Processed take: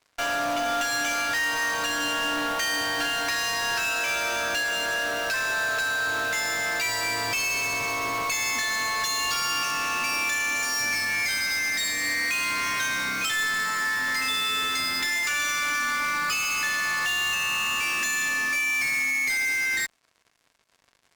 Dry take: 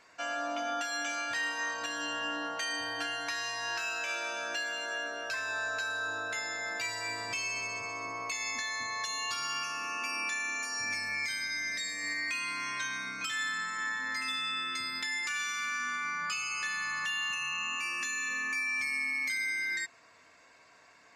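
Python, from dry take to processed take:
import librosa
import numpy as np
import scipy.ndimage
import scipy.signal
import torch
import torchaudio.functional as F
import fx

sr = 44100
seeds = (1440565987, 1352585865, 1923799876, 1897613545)

p1 = fx.fuzz(x, sr, gain_db=47.0, gate_db=-56.0)
p2 = x + (p1 * librosa.db_to_amplitude(-4.0))
p3 = fx.cheby_harmonics(p2, sr, harmonics=(3,), levels_db=(-10,), full_scale_db=-13.0)
y = p3 * librosa.db_to_amplitude(-5.5)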